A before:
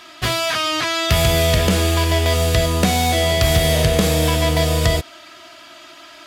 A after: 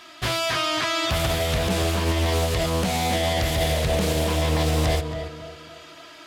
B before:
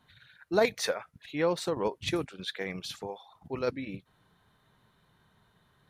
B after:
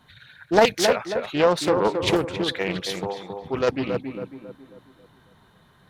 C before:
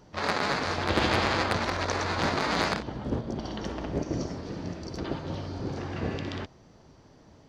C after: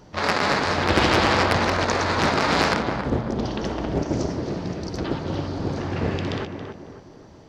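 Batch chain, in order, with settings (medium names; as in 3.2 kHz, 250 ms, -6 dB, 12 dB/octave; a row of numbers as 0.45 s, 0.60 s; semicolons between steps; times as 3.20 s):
peak limiter -10 dBFS; on a send: tape echo 273 ms, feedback 48%, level -4.5 dB, low-pass 1.4 kHz; on the sum: loudspeaker Doppler distortion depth 0.39 ms; normalise loudness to -23 LUFS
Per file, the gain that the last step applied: -4.0 dB, +9.0 dB, +6.0 dB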